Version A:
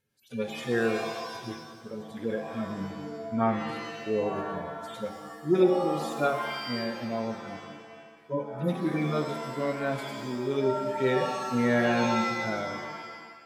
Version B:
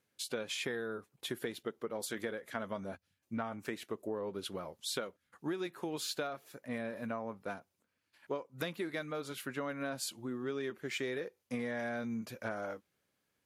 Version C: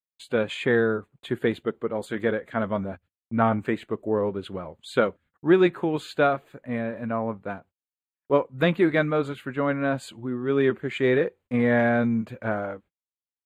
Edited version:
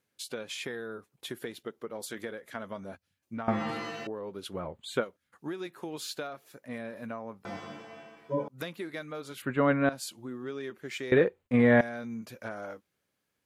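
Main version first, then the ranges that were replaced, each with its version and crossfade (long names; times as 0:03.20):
B
0:03.48–0:04.07: punch in from A
0:04.57–0:04.97: punch in from C, crossfade 0.16 s
0:07.45–0:08.48: punch in from A
0:09.42–0:09.89: punch in from C
0:11.12–0:11.81: punch in from C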